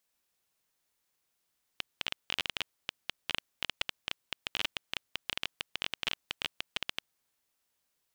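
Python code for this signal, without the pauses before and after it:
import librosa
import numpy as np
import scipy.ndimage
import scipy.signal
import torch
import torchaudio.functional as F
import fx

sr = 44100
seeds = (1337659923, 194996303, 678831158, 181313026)

y = fx.geiger_clicks(sr, seeds[0], length_s=5.22, per_s=14.0, level_db=-13.5)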